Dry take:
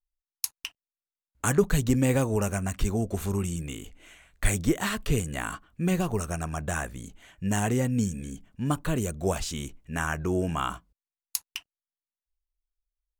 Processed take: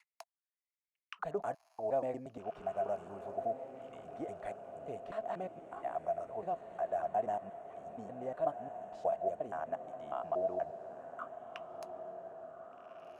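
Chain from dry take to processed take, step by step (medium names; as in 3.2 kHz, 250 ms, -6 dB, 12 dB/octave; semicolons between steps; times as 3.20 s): slices played last to first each 119 ms, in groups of 5; auto-wah 670–2200 Hz, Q 13, down, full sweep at -30.5 dBFS; echo that smears into a reverb 1587 ms, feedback 54%, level -10 dB; trim +8 dB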